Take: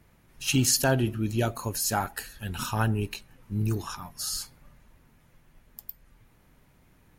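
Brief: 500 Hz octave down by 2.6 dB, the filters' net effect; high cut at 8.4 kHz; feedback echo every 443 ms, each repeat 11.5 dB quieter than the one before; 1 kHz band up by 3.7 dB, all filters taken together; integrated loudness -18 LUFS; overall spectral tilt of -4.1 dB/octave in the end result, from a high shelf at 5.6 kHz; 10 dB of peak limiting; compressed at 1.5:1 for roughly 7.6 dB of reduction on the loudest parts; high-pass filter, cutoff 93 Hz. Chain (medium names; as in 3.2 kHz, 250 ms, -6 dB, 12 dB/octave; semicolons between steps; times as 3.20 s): high-pass 93 Hz; low-pass 8.4 kHz; peaking EQ 500 Hz -6.5 dB; peaking EQ 1 kHz +7 dB; treble shelf 5.6 kHz +8 dB; compression 1.5:1, threshold -39 dBFS; peak limiter -25 dBFS; feedback delay 443 ms, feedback 27%, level -11.5 dB; trim +18 dB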